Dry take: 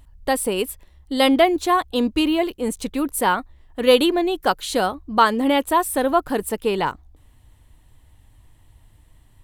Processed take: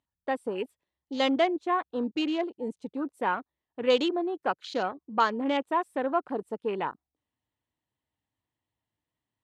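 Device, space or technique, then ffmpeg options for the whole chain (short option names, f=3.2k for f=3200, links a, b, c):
over-cleaned archive recording: -af "highpass=190,lowpass=5.9k,afwtdn=0.0282,volume=-8.5dB"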